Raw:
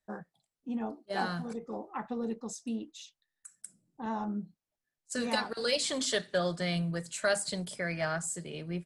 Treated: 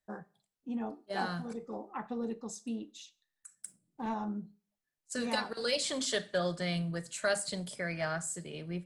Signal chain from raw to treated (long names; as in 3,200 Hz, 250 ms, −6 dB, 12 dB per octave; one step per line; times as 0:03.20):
four-comb reverb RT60 0.37 s, combs from 30 ms, DRR 18.5 dB
0:03.55–0:04.14: leveller curve on the samples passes 1
level −2 dB